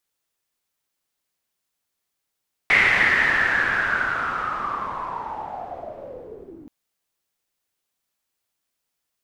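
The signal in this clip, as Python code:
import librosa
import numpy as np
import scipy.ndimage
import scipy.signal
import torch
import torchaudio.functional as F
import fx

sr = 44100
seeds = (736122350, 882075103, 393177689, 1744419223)

y = fx.riser_noise(sr, seeds[0], length_s=3.98, colour='white', kind='lowpass', start_hz=2100.0, end_hz=280.0, q=9.0, swell_db=-18.5, law='linear')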